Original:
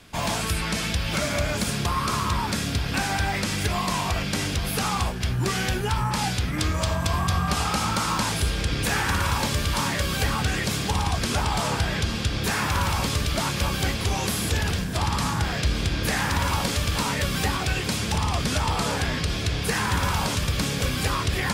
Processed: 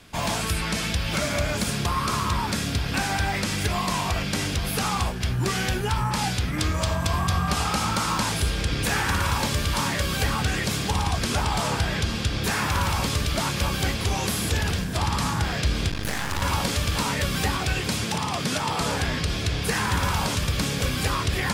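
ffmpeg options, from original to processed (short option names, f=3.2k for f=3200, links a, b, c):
-filter_complex "[0:a]asettb=1/sr,asplit=3[a][b][c];[a]atrim=end=15.904[d];[b]atrim=start=15.9:end=16.42,asetpts=PTS-STARTPTS,afade=t=in:d=0.004:c=qsin,afade=t=out:st=0.516:d=0.004:c=qsin,aeval=exprs='max(val(0),0)':c=same[e];[c]atrim=start=16.416[f];[d][e]acrossfade=d=0.004:c1=hsin:c2=qsin[g];[g][f]acrossfade=d=0.004:c1=qsin:c2=hsin,asettb=1/sr,asplit=3[h][i][j];[h]atrim=end=18.044[k];[i]atrim=start=18.04:end=18.81,asetpts=PTS-STARTPTS,afade=t=in:d=0.004:c=qsin,afade=t=out:st=0.766:d=0.004:c=qsin,highpass=f=120:w=0.5412,highpass=f=120:w=1.3066[l];[j]atrim=start=18.806[m];[k][l]acrossfade=d=0.004:c1=hsin:c2=qsin[n];[n][m]acrossfade=d=0.004:c1=qsin:c2=hsin"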